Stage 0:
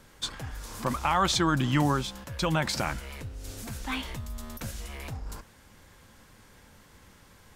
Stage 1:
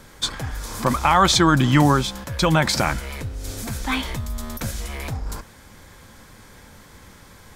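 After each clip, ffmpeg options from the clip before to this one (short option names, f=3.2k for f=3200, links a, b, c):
-af "bandreject=f=2.8k:w=12,volume=9dB"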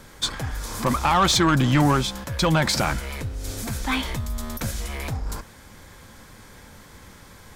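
-af "asoftclip=type=tanh:threshold=-12dB"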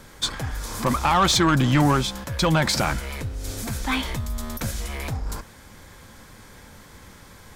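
-af anull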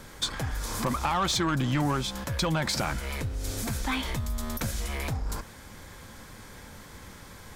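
-af "acompressor=threshold=-28dB:ratio=2.5"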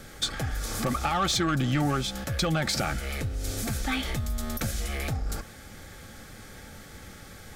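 -af "asuperstop=centerf=990:order=12:qfactor=5.2,volume=1dB"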